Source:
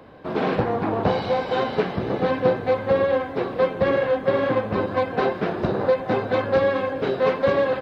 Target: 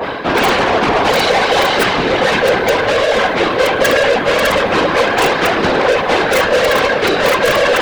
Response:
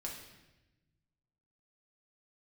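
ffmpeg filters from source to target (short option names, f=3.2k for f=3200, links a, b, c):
-filter_complex "[0:a]areverse,acompressor=mode=upward:threshold=-20dB:ratio=2.5,areverse,asplit=2[a][b];[b]highpass=f=720:p=1,volume=28dB,asoftclip=type=tanh:threshold=-6dB[c];[a][c]amix=inputs=2:normalize=0,lowpass=f=3.2k:p=1,volume=-6dB,bandreject=f=600:w=14,acrossover=split=220|1500[d][e][f];[f]aeval=exprs='(mod(4.73*val(0)+1,2)-1)/4.73':c=same[g];[d][e][g]amix=inputs=3:normalize=0,afftfilt=real='hypot(re,im)*cos(2*PI*random(0))':imag='hypot(re,im)*sin(2*PI*random(1))':win_size=512:overlap=0.75,acontrast=69,adynamicequalizer=threshold=0.0316:dfrequency=1800:dqfactor=0.7:tfrequency=1800:tqfactor=0.7:attack=5:release=100:ratio=0.375:range=3.5:mode=boostabove:tftype=highshelf"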